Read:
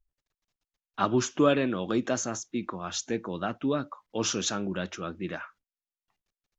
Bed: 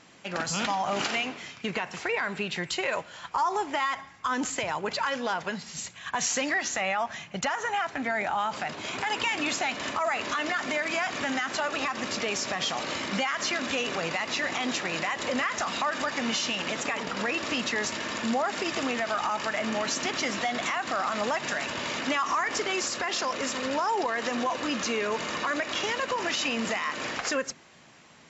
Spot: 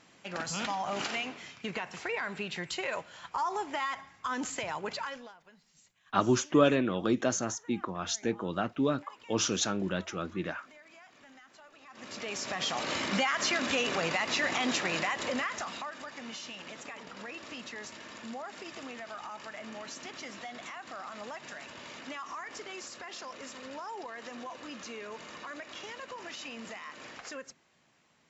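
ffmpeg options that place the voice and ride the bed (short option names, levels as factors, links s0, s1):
-filter_complex "[0:a]adelay=5150,volume=0.944[s0];[1:a]volume=10.6,afade=t=out:st=4.89:d=0.44:silence=0.0891251,afade=t=in:st=11.85:d=1.14:silence=0.0501187,afade=t=out:st=14.88:d=1.06:silence=0.211349[s1];[s0][s1]amix=inputs=2:normalize=0"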